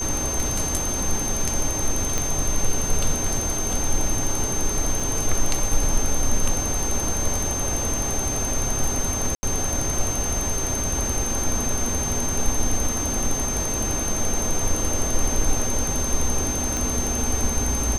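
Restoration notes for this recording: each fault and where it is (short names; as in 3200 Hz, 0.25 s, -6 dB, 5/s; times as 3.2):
tone 6300 Hz -26 dBFS
2.18 pop
5 gap 3.1 ms
9.35–9.43 gap 80 ms
16.77 pop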